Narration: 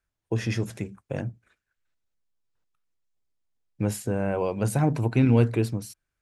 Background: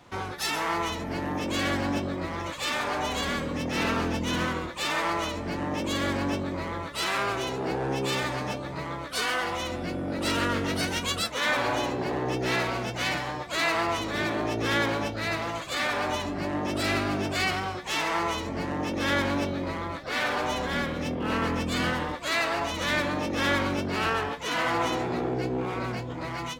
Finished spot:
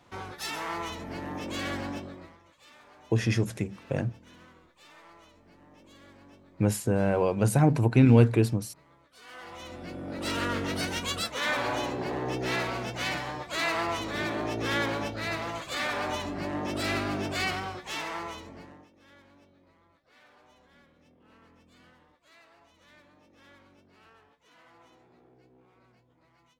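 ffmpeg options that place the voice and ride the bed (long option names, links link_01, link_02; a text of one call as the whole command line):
ffmpeg -i stem1.wav -i stem2.wav -filter_complex "[0:a]adelay=2800,volume=1.5dB[link_01];[1:a]volume=17dB,afade=type=out:start_time=1.8:duration=0.59:silence=0.1,afade=type=in:start_time=9.2:duration=1.32:silence=0.0707946,afade=type=out:start_time=17.47:duration=1.42:silence=0.0375837[link_02];[link_01][link_02]amix=inputs=2:normalize=0" out.wav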